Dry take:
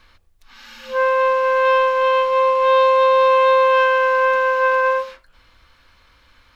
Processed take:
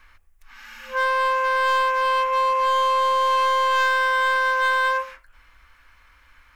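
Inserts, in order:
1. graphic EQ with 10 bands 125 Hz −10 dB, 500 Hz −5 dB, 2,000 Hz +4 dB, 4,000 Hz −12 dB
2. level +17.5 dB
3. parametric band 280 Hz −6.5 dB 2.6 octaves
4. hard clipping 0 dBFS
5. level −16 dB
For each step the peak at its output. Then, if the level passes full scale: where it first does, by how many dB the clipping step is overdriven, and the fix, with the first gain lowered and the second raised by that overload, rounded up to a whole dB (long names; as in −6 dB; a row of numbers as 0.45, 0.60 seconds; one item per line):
−7.5, +10.0, +8.5, 0.0, −16.0 dBFS
step 2, 8.5 dB
step 2 +8.5 dB, step 5 −7 dB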